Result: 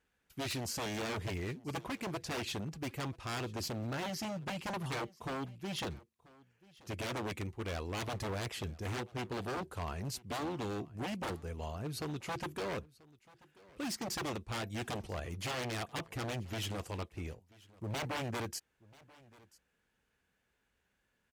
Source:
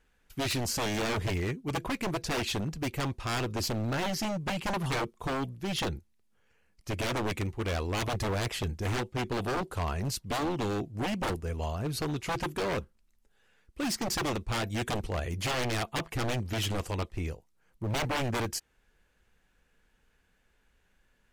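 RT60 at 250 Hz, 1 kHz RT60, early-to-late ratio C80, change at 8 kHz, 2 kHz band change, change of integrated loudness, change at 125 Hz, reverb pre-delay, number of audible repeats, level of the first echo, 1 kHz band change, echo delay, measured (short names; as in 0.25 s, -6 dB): none, none, none, -7.0 dB, -7.0 dB, -7.0 dB, -7.5 dB, none, 1, -23.0 dB, -7.0 dB, 0.986 s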